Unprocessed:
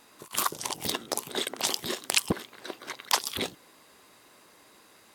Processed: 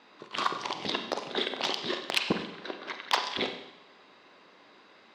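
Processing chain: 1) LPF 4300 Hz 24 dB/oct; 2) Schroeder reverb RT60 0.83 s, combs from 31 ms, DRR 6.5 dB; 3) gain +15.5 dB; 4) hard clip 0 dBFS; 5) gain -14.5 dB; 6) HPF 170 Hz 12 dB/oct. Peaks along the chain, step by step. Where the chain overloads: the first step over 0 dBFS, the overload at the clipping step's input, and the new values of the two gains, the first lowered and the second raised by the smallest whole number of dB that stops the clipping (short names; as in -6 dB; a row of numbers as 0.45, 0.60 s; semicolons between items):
-8.5, -8.5, +7.0, 0.0, -14.5, -13.0 dBFS; step 3, 7.0 dB; step 3 +8.5 dB, step 5 -7.5 dB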